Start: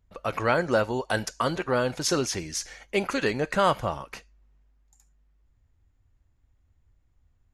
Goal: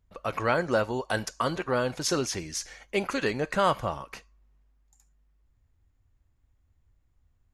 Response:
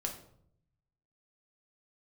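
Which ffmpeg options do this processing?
-filter_complex "[0:a]asplit=2[s0][s1];[s1]bandpass=f=1100:t=q:w=11:csg=0[s2];[1:a]atrim=start_sample=2205[s3];[s2][s3]afir=irnorm=-1:irlink=0,volume=0.282[s4];[s0][s4]amix=inputs=2:normalize=0,volume=0.794"

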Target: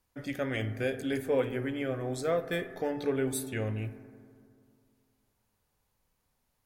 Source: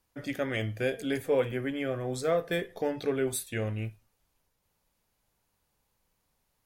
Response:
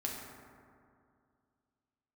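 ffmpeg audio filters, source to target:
-filter_complex "[0:a]equalizer=f=470:t=o:w=2.8:g=-2,asplit=2[s0][s1];[1:a]atrim=start_sample=2205,lowpass=2300[s2];[s1][s2]afir=irnorm=-1:irlink=0,volume=0.355[s3];[s0][s3]amix=inputs=2:normalize=0,volume=0.794"

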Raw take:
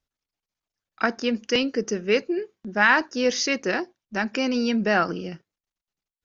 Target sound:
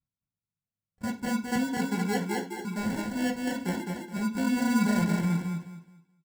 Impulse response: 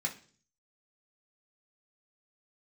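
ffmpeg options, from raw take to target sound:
-filter_complex "[0:a]bandpass=f=140:t=q:w=1.5:csg=0,aecho=1:1:212|424|636|848:0.708|0.184|0.0479|0.0124,acrusher=samples=36:mix=1:aa=0.000001[s0];[1:a]atrim=start_sample=2205,afade=t=out:st=0.16:d=0.01,atrim=end_sample=7497[s1];[s0][s1]afir=irnorm=-1:irlink=0"

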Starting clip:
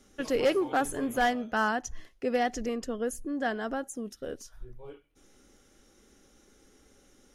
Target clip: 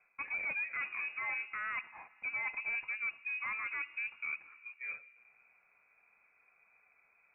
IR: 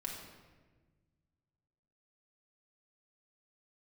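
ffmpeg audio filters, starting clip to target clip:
-filter_complex "[0:a]highpass=f=290:w=0.5412,highpass=f=290:w=1.3066,agate=range=0.316:threshold=0.002:ratio=16:detection=peak,areverse,acompressor=threshold=0.0126:ratio=8,areverse,asoftclip=type=tanh:threshold=0.0133,asplit=2[s0][s1];[1:a]atrim=start_sample=2205,asetrate=27342,aresample=44100[s2];[s1][s2]afir=irnorm=-1:irlink=0,volume=0.133[s3];[s0][s3]amix=inputs=2:normalize=0,lowpass=f=2400:t=q:w=0.5098,lowpass=f=2400:t=q:w=0.6013,lowpass=f=2400:t=q:w=0.9,lowpass=f=2400:t=q:w=2.563,afreqshift=-2800,volume=1.78"

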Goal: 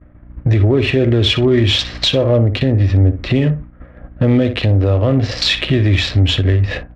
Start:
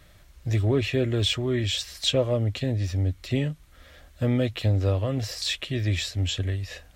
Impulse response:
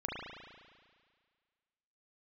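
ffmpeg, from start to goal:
-filter_complex "[0:a]asplit=2[s0][s1];[s1]aecho=0:1:60|120:0.251|0.0477[s2];[s0][s2]amix=inputs=2:normalize=0,aeval=exprs='val(0)+0.00316*(sin(2*PI*60*n/s)+sin(2*PI*2*60*n/s)/2+sin(2*PI*3*60*n/s)/3+sin(2*PI*4*60*n/s)/4+sin(2*PI*5*60*n/s)/5)':c=same,acrossover=split=2300[s3][s4];[s3]equalizer=f=310:t=o:w=1.4:g=3[s5];[s4]acrusher=bits=7:mix=0:aa=0.000001[s6];[s5][s6]amix=inputs=2:normalize=0,agate=range=0.0224:threshold=0.0141:ratio=3:detection=peak,adynamicsmooth=sensitivity=7.5:basefreq=2100,lowpass=4000,acompressor=threshold=0.00631:ratio=2,alimiter=level_in=26.6:limit=0.891:release=50:level=0:latency=1,volume=0.668"

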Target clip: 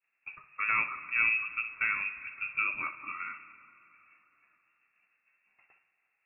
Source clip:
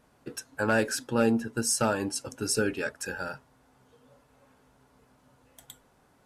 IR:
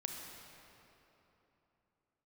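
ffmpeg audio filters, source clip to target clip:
-filter_complex "[0:a]lowpass=f=2400:t=q:w=0.5098,lowpass=f=2400:t=q:w=0.6013,lowpass=f=2400:t=q:w=0.9,lowpass=f=2400:t=q:w=2.563,afreqshift=-2800,agate=range=0.0224:threshold=0.00178:ratio=3:detection=peak,asplit=2[s0][s1];[1:a]atrim=start_sample=2205,adelay=60[s2];[s1][s2]afir=irnorm=-1:irlink=0,volume=0.335[s3];[s0][s3]amix=inputs=2:normalize=0,volume=0.631"

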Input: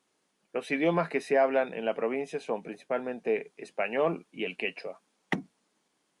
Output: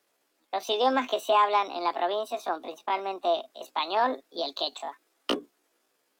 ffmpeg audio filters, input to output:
-filter_complex "[0:a]acrossover=split=190|1200|1400[s0][s1][s2][s3];[s2]acompressor=threshold=0.00158:ratio=6[s4];[s0][s1][s4][s3]amix=inputs=4:normalize=0,asetrate=68011,aresample=44100,atempo=0.64842,volume=1.33"

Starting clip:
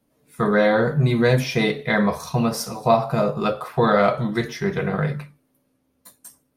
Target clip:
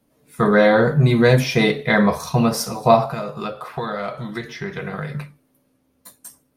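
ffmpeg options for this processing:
-filter_complex "[0:a]asettb=1/sr,asplit=3[s0][s1][s2];[s0]atrim=end=3.054[s3];[s1]atrim=start=3.05:end=5.15,asetpts=PTS-STARTPTS,afade=t=in:d=0.004:c=qsin,afade=t=out:st=2.096:d=0.004:c=qsin,acrossover=split=1100|4900[s4][s5][s6];[s4]acompressor=threshold=0.0251:ratio=4[s7];[s5]acompressor=threshold=0.0158:ratio=4[s8];[s6]acompressor=threshold=0.00126:ratio=4[s9];[s7][s8][s9]amix=inputs=3:normalize=0[s10];[s2]atrim=start=5.146[s11];[s3][s10]acrossfade=d=0.004:c1=hsin:c2=qsin[s12];[s12][s11]acrossfade=d=0.004:c1=qsin:c2=hsin,volume=1.5"

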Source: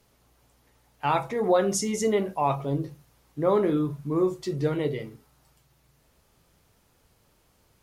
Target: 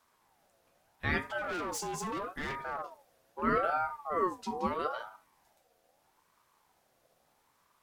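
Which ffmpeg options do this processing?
-filter_complex "[0:a]asettb=1/sr,asplit=3[s0][s1][s2];[s0]atrim=end=1.384[s3];[s1]atrim=start=1.38:end=3.42,asetpts=PTS-STARTPTS,afade=t=in:d=0.004:c=qsin,afade=t=out:st=2.036:d=0.004:c=qsin,volume=23.7,asoftclip=hard,volume=0.0422[s4];[s2]atrim=start=3.416[s5];[s3][s4]acrossfade=d=0.004:c1=hsin:c2=qsin[s6];[s6][s5]acrossfade=d=0.004:c1=qsin:c2=hsin,aeval=exprs='val(0)*sin(2*PI*840*n/s+840*0.3/0.78*sin(2*PI*0.78*n/s))':c=same,volume=0.631"

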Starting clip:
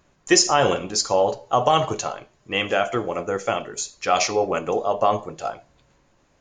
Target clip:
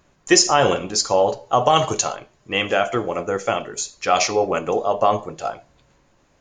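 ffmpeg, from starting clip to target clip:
-filter_complex "[0:a]asettb=1/sr,asplit=3[s0][s1][s2];[s0]atrim=end=1.764[s3];[s1]atrim=start=1.76:end=2.16,asetpts=PTS-STARTPTS,afade=t=in:d=0.004:c=qsin,afade=t=out:st=0.396:d=0.004:c=qsin,highshelf=f=4500:g=11[s4];[s2]atrim=start=2.156[s5];[s3][s4]acrossfade=d=0.004:c1=hsin:c2=qsin[s6];[s6][s5]acrossfade=d=0.004:c1=qsin:c2=hsin,volume=1.26"

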